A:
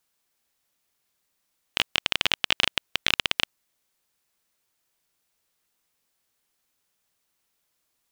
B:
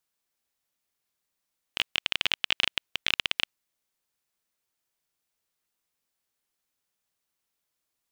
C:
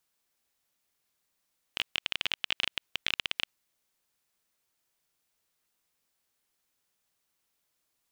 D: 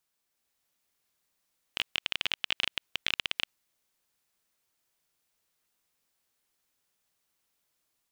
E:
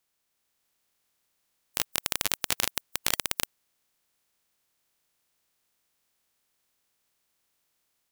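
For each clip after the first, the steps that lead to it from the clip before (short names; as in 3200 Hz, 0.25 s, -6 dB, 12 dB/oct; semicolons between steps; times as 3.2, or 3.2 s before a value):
dynamic EQ 2700 Hz, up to +5 dB, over -33 dBFS, Q 0.97; gain -7 dB
limiter -15 dBFS, peak gain reduction 8.5 dB; gain +3.5 dB
AGC gain up to 3 dB; gain -2.5 dB
spectral contrast lowered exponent 0.14; gain +3 dB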